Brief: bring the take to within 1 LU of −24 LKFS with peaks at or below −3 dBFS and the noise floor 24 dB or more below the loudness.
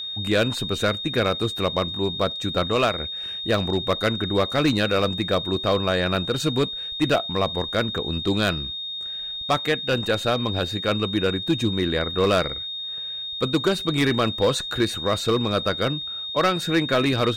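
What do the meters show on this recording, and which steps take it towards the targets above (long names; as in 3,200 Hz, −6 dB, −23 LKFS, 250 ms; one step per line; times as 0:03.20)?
share of clipped samples 1.0%; peaks flattened at −13.0 dBFS; interfering tone 3,700 Hz; level of the tone −29 dBFS; integrated loudness −23.0 LKFS; sample peak −13.0 dBFS; target loudness −24.0 LKFS
→ clipped peaks rebuilt −13 dBFS
notch filter 3,700 Hz, Q 30
level −1 dB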